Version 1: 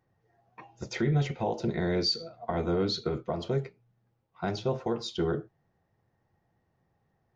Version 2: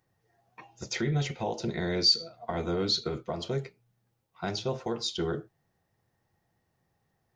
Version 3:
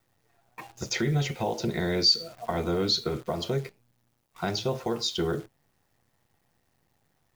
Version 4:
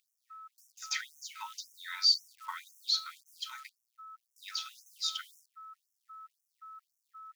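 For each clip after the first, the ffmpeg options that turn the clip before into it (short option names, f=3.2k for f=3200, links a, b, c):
-af "highshelf=f=2.8k:g=11.5,volume=-2.5dB"
-filter_complex "[0:a]asplit=2[a][b];[b]acompressor=threshold=-37dB:ratio=6,volume=1dB[c];[a][c]amix=inputs=2:normalize=0,acrusher=bits=9:dc=4:mix=0:aa=0.000001"
-af "aeval=exprs='val(0)+0.00794*sin(2*PI*1300*n/s)':c=same,afftfilt=real='re*gte(b*sr/1024,850*pow(5500/850,0.5+0.5*sin(2*PI*1.9*pts/sr)))':imag='im*gte(b*sr/1024,850*pow(5500/850,0.5+0.5*sin(2*PI*1.9*pts/sr)))':win_size=1024:overlap=0.75,volume=-3.5dB"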